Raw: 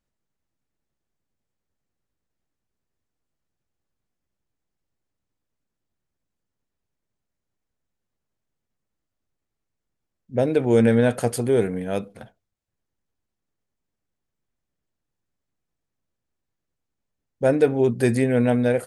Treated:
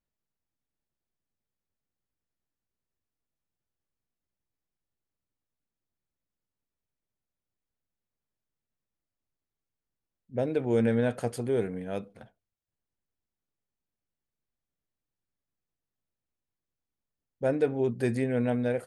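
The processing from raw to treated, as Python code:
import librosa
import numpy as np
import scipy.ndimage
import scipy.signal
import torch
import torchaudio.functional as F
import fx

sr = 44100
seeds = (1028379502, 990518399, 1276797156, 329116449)

y = fx.high_shelf(x, sr, hz=7600.0, db=-8.5)
y = y * 10.0 ** (-8.0 / 20.0)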